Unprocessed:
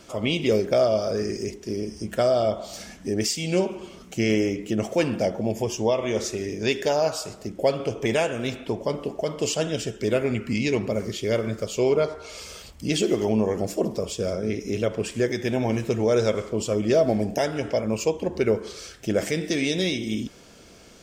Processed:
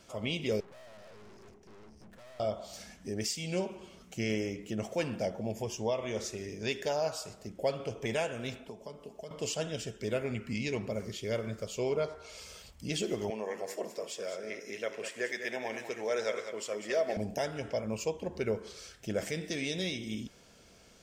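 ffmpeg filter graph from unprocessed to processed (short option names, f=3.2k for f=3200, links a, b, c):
-filter_complex "[0:a]asettb=1/sr,asplit=3[a][b][c];[a]atrim=end=0.604[d];[b]atrim=start=0.6:end=2.4,asetpts=PTS-STARTPTS,afade=t=in:d=0.004:c=qsin,afade=t=out:st=1.796:d=0.004:c=qsin,highshelf=f=2.1k:g=-12,acrossover=split=240|3000[e][f][g];[f]acompressor=threshold=-24dB:ratio=3:attack=3.2:release=140:knee=2.83:detection=peak[h];[e][h][g]amix=inputs=3:normalize=0,aeval=exprs='(tanh(141*val(0)+0.55)-tanh(0.55))/141':c=same[i];[c]atrim=start=2.396[j];[d][i]acrossfade=d=0.004:c1=hsin:c2=qsin[k];[k][j]acrossfade=d=0.004:c1=qsin:c2=hsin,asettb=1/sr,asplit=3[l][m][n];[l]atrim=end=8.584[o];[m]atrim=start=8.58:end=9.31,asetpts=PTS-STARTPTS,afade=t=in:d=0.004:c=qsin,afade=t=out:st=0.726:d=0.004:c=qsin,aecho=1:1:4.7:0.3,atrim=end_sample=32193,acrossover=split=240|1900|5700[p][q][r][s];[p]acompressor=threshold=-47dB:ratio=3[t];[q]acompressor=threshold=-36dB:ratio=3[u];[r]acompressor=threshold=-57dB:ratio=3[v];[s]acompressor=threshold=-57dB:ratio=3[w];[t][u][v][w]amix=inputs=4:normalize=0,equalizer=f=1.9k:t=o:w=0.27:g=-4[x];[n]atrim=start=9.306[y];[o][x]acrossfade=d=0.004:c1=hsin:c2=qsin[z];[z][y]acrossfade=d=0.004:c1=qsin:c2=hsin,asettb=1/sr,asplit=3[aa][ab][ac];[aa]atrim=end=13.304[ad];[ab]atrim=start=13.3:end=17.17,asetpts=PTS-STARTPTS,afade=t=in:d=0.004:c=qsin,afade=t=out:st=3.866:d=0.004:c=qsin,highpass=420,equalizer=f=1.9k:t=o:w=0.46:g=9.5,aecho=1:1:199:0.335,atrim=end_sample=170667[ae];[ac]atrim=start=17.166[af];[ad][ae]acrossfade=d=0.004:c1=hsin:c2=qsin[ag];[ag][af]acrossfade=d=0.004:c1=qsin:c2=hsin,equalizer=f=320:t=o:w=0.72:g=-5,bandreject=f=1.2k:w=27,volume=-8.5dB"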